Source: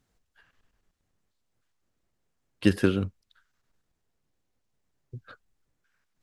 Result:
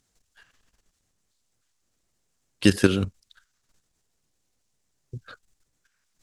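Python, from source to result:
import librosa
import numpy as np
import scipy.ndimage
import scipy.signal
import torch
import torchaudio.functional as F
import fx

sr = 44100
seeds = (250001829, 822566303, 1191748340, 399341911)

y = fx.peak_eq(x, sr, hz=7300.0, db=11.5, octaves=1.9)
y = fx.level_steps(y, sr, step_db=10)
y = y * 10.0 ** (6.5 / 20.0)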